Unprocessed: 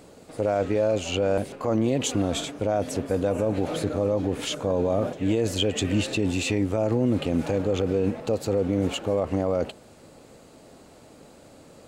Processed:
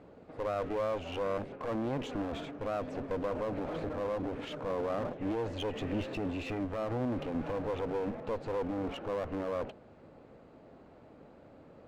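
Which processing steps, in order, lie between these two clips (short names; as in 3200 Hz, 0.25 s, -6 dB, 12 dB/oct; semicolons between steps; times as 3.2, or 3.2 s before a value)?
LPF 1900 Hz 12 dB/oct; one-sided clip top -34 dBFS; gain -5 dB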